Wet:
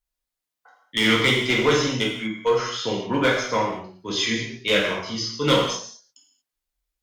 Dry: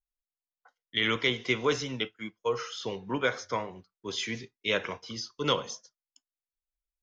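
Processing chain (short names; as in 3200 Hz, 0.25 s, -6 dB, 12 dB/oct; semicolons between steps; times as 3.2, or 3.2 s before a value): one-sided clip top -22.5 dBFS; non-linear reverb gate 0.26 s falling, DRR -3 dB; gain +5 dB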